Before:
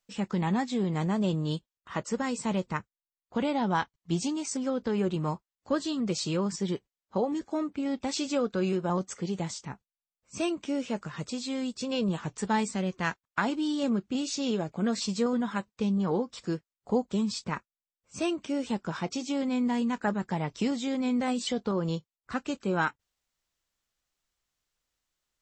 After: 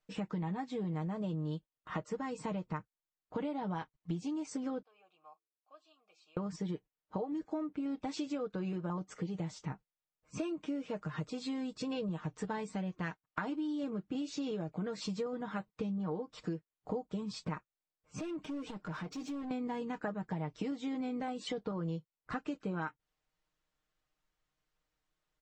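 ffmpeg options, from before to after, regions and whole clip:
ffmpeg -i in.wav -filter_complex "[0:a]asettb=1/sr,asplit=3[link_01][link_02][link_03];[link_01]atrim=end=4.824[link_04];[link_02]atrim=start=4.82:end=6.37,asetpts=PTS-STARTPTS,afade=type=in:duration=0.004:curve=qsin,afade=type=out:start_time=1.546:duration=0.004:curve=qsin,asplit=3[link_05][link_06][link_07];[link_05]bandpass=frequency=730:width_type=q:width=8,volume=0dB[link_08];[link_06]bandpass=frequency=1090:width_type=q:width=8,volume=-6dB[link_09];[link_07]bandpass=frequency=2440:width_type=q:width=8,volume=-9dB[link_10];[link_08][link_09][link_10]amix=inputs=3:normalize=0,aderivative,bandreject=frequency=111.2:width_type=h:width=4,bandreject=frequency=222.4:width_type=h:width=4,bandreject=frequency=333.6:width_type=h:width=4,bandreject=frequency=444.8:width_type=h:width=4[link_11];[link_03]atrim=start=6.366[link_12];[link_04][link_11]acrossfade=duration=0.004:curve1=hsin:curve2=qsin[link_13];[link_13][link_12]acrossfade=duration=0.004:curve1=qsin:curve2=hsin,asettb=1/sr,asplit=3[link_14][link_15][link_16];[link_14]atrim=end=18.194[link_17];[link_15]atrim=start=18.19:end=19.51,asetpts=PTS-STARTPTS,afade=type=in:duration=0.004:curve=qsin,afade=type=out:start_time=1.316:duration=0.004:curve=qsin,acompressor=threshold=-36dB:ratio=6:attack=3.2:release=140:knee=1:detection=peak,asoftclip=type=hard:threshold=-38.5dB[link_18];[link_16]atrim=start=19.506[link_19];[link_17][link_18]acrossfade=duration=0.004:curve1=hsin:curve2=qsin[link_20];[link_20][link_19]acrossfade=duration=0.004:curve1=qsin:curve2=hsin,lowpass=frequency=1700:poles=1,aecho=1:1:6.5:0.67,acompressor=threshold=-36dB:ratio=6,volume=1dB" out.wav

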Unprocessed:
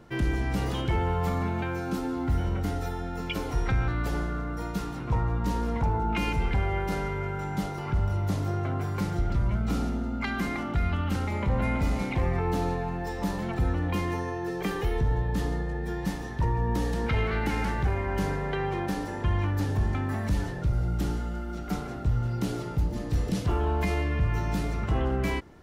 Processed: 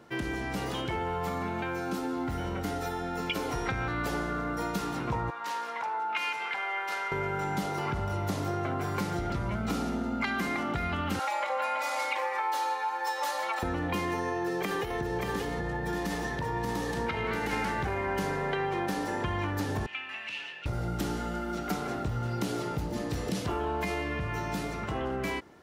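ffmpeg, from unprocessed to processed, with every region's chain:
ffmpeg -i in.wav -filter_complex "[0:a]asettb=1/sr,asplit=3[link_01][link_02][link_03];[link_01]atrim=end=5.304[link_04];[link_02]atrim=start=5.3:end=7.12,asetpts=PTS-STARTPTS,afade=type=in:duration=0.004:curve=qsin,afade=type=out:start_time=1.816:duration=0.004:curve=qsin,highpass=1100,highshelf=frequency=4800:gain=-9.5[link_05];[link_03]atrim=start=7.116[link_06];[link_04][link_05]acrossfade=duration=0.004:curve1=hsin:curve2=qsin[link_07];[link_07][link_06]acrossfade=duration=0.004:curve1=qsin:curve2=hsin,asettb=1/sr,asplit=3[link_08][link_09][link_10];[link_08]atrim=end=11.194[link_11];[link_09]atrim=start=11.19:end=13.63,asetpts=PTS-STARTPTS,afade=type=in:duration=0.004:curve=qsin,afade=type=out:start_time=2.436:duration=0.004:curve=qsin,highpass=frequency=600:width=0.5412,highpass=frequency=600:width=1.3066,aecho=1:1:3.6:0.99,atrim=end_sample=107604[link_12];[link_10]atrim=start=13.626[link_13];[link_11][link_12]acrossfade=duration=0.004:curve1=hsin:curve2=qsin[link_14];[link_14][link_13]acrossfade=duration=0.004:curve1=qsin:curve2=hsin,asettb=1/sr,asplit=3[link_15][link_16][link_17];[link_15]atrim=end=14.324[link_18];[link_16]atrim=start=14.32:end=17.53,asetpts=PTS-STARTPTS,afade=type=in:duration=0.004:curve=qsin,afade=type=out:start_time=3.206:duration=0.004:curve=qsin,acompressor=threshold=-28dB:ratio=6:attack=3.2:release=140:knee=1:detection=peak,aecho=1:1:582:0.596,atrim=end_sample=141561[link_19];[link_17]atrim=start=17.526[link_20];[link_18][link_19]acrossfade=duration=0.004:curve1=hsin:curve2=qsin[link_21];[link_21][link_20]acrossfade=duration=0.004:curve1=qsin:curve2=hsin,asettb=1/sr,asplit=3[link_22][link_23][link_24];[link_22]atrim=end=19.864[link_25];[link_23]atrim=start=19.86:end=20.66,asetpts=PTS-STARTPTS,afade=type=in:duration=0.004:curve=qsin,afade=type=out:start_time=0.796:duration=0.004:curve=qsin,lowpass=frequency=2700:width_type=q:width=12,aderivative[link_26];[link_24]atrim=start=20.656[link_27];[link_25][link_26]acrossfade=duration=0.004:curve1=hsin:curve2=qsin[link_28];[link_28][link_27]acrossfade=duration=0.004:curve1=qsin:curve2=hsin,dynaudnorm=framelen=890:gausssize=7:maxgain=6dB,highpass=frequency=300:poles=1,acompressor=threshold=-29dB:ratio=4,volume=1dB" out.wav

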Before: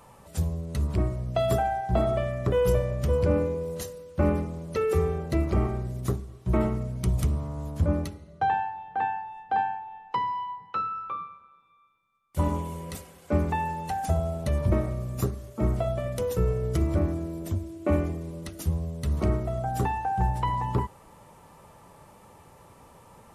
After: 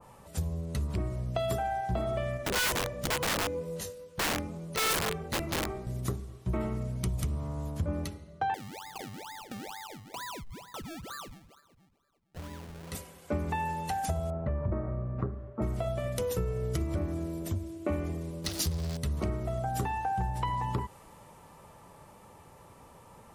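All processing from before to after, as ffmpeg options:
ffmpeg -i in.wav -filter_complex "[0:a]asettb=1/sr,asplit=3[link_01][link_02][link_03];[link_01]atrim=end=2.374[link_04];[link_02]atrim=start=2.37:end=5.87,asetpts=PTS-STARTPTS,afade=type=in:duration=0.004:curve=qsin,afade=type=out:start_time=3.496:duration=0.004:curve=qsin,bandreject=frequency=60:width_type=h:width=6,bandreject=frequency=120:width_type=h:width=6,bandreject=frequency=180:width_type=h:width=6,bandreject=frequency=240:width_type=h:width=6,bandreject=frequency=300:width_type=h:width=6,bandreject=frequency=360:width_type=h:width=6,bandreject=frequency=420:width_type=h:width=6,bandreject=frequency=480:width_type=h:width=6,bandreject=frequency=540:width_type=h:width=6,flanger=delay=18.5:depth=2.3:speed=2.2,aeval=exprs='(mod(15*val(0)+1,2)-1)/15':channel_layout=same[link_05];[link_03]atrim=start=5.866[link_06];[link_04][link_05]acrossfade=duration=0.004:curve1=hsin:curve2=qsin[link_07];[link_07][link_06]acrossfade=duration=0.004:curve1=qsin:curve2=hsin,asettb=1/sr,asplit=3[link_08][link_09][link_10];[link_08]atrim=end=8.544[link_11];[link_09]atrim=start=8.54:end=12.92,asetpts=PTS-STARTPTS,afade=type=in:duration=0.004:curve=qsin,afade=type=out:start_time=4.376:duration=0.004:curve=qsin,acompressor=threshold=-40dB:ratio=4:attack=3.2:release=140:knee=1:detection=peak,acrusher=samples=30:mix=1:aa=0.000001:lfo=1:lforange=30:lforate=2.2[link_12];[link_10]atrim=start=12.916[link_13];[link_11][link_12]acrossfade=duration=0.004:curve1=hsin:curve2=qsin[link_14];[link_14][link_13]acrossfade=duration=0.004:curve1=qsin:curve2=hsin,asettb=1/sr,asplit=3[link_15][link_16][link_17];[link_15]atrim=end=14.304[link_18];[link_16]atrim=start=14.3:end=15.62,asetpts=PTS-STARTPTS,afade=type=in:duration=0.004:curve=qsin,afade=type=out:start_time=1.316:duration=0.004:curve=qsin,lowpass=frequency=1500:width=0.5412,lowpass=frequency=1500:width=1.3066,aemphasis=mode=production:type=75kf[link_19];[link_17]atrim=start=15.616[link_20];[link_18][link_19]acrossfade=duration=0.004:curve1=hsin:curve2=qsin[link_21];[link_21][link_20]acrossfade=duration=0.004:curve1=qsin:curve2=hsin,asettb=1/sr,asplit=3[link_22][link_23][link_24];[link_22]atrim=end=18.444[link_25];[link_23]atrim=start=18.44:end=18.97,asetpts=PTS-STARTPTS,afade=type=in:duration=0.004:curve=qsin,afade=type=out:start_time=0.526:duration=0.004:curve=qsin,aeval=exprs='val(0)+0.5*0.015*sgn(val(0))':channel_layout=same,equalizer=frequency=4700:width=1.4:gain=10.5[link_26];[link_24]atrim=start=18.966[link_27];[link_25][link_26]acrossfade=duration=0.004:curve1=hsin:curve2=qsin[link_28];[link_28][link_27]acrossfade=duration=0.004:curve1=qsin:curve2=hsin,acompressor=threshold=-26dB:ratio=6,adynamicequalizer=threshold=0.00562:dfrequency=1700:dqfactor=0.7:tfrequency=1700:tqfactor=0.7:attack=5:release=100:ratio=0.375:range=2:mode=boostabove:tftype=highshelf,volume=-1.5dB" out.wav

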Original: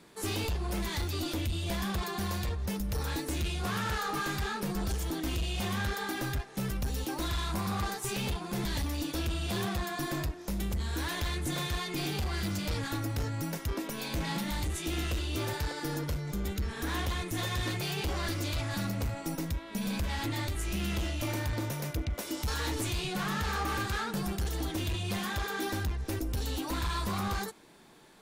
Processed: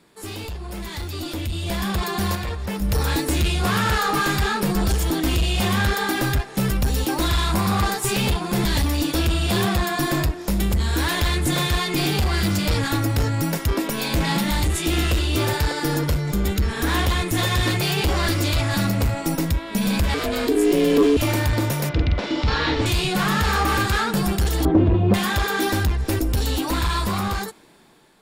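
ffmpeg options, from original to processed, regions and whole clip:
ffmpeg -i in.wav -filter_complex "[0:a]asettb=1/sr,asplit=3[link_01][link_02][link_03];[link_01]atrim=end=2.354[link_04];[link_02]atrim=start=2.35:end=2.82,asetpts=PTS-STARTPTS,afade=type=in:duration=0.004:curve=qsin,afade=type=out:start_time=0.466:duration=0.004:curve=qsin,acrossover=split=2900[link_05][link_06];[link_06]acompressor=threshold=-49dB:ratio=4:attack=1:release=60[link_07];[link_05][link_07]amix=inputs=2:normalize=0,lowshelf=frequency=420:gain=-6.5[link_08];[link_03]atrim=start=2.816[link_09];[link_04][link_08]acrossfade=duration=0.004:curve1=hsin:curve2=qsin[link_10];[link_10][link_09]acrossfade=duration=0.004:curve1=qsin:curve2=hsin,asettb=1/sr,asplit=3[link_11][link_12][link_13];[link_11]atrim=end=20.144[link_14];[link_12]atrim=start=20.14:end=21.17,asetpts=PTS-STARTPTS,afade=type=in:duration=0.004:curve=qsin,afade=type=out:start_time=1.026:duration=0.004:curve=qsin,asubboost=boost=11:cutoff=120,aeval=exprs='val(0)*sin(2*PI*360*n/s)':channel_layout=same,asoftclip=type=hard:threshold=-22.5dB[link_15];[link_13]atrim=start=21.166[link_16];[link_14][link_15]acrossfade=duration=0.004:curve1=hsin:curve2=qsin[link_17];[link_17][link_16]acrossfade=duration=0.004:curve1=qsin:curve2=hsin,asettb=1/sr,asplit=3[link_18][link_19][link_20];[link_18]atrim=end=21.894[link_21];[link_19]atrim=start=21.89:end=22.86,asetpts=PTS-STARTPTS,afade=type=in:duration=0.004:curve=qsin,afade=type=out:start_time=0.966:duration=0.004:curve=qsin,lowpass=frequency=4400:width=0.5412,lowpass=frequency=4400:width=1.3066,asplit=2[link_22][link_23];[link_23]adelay=48,volume=-4dB[link_24];[link_22][link_24]amix=inputs=2:normalize=0,atrim=end_sample=42777[link_25];[link_20]atrim=start=22.856[link_26];[link_21][link_25]acrossfade=duration=0.004:curve1=hsin:curve2=qsin[link_27];[link_27][link_26]acrossfade=duration=0.004:curve1=qsin:curve2=hsin,asettb=1/sr,asplit=3[link_28][link_29][link_30];[link_28]atrim=end=24.654[link_31];[link_29]atrim=start=24.65:end=25.14,asetpts=PTS-STARTPTS,afade=type=in:duration=0.004:curve=qsin,afade=type=out:start_time=0.486:duration=0.004:curve=qsin,lowpass=1100,equalizer=frequency=300:width=0.39:gain=8.5[link_32];[link_30]atrim=start=25.136[link_33];[link_31][link_32]acrossfade=duration=0.004:curve1=hsin:curve2=qsin[link_34];[link_34][link_33]acrossfade=duration=0.004:curve1=qsin:curve2=hsin,bandreject=frequency=6100:width=13,dynaudnorm=framelen=710:gausssize=5:maxgain=12dB" out.wav

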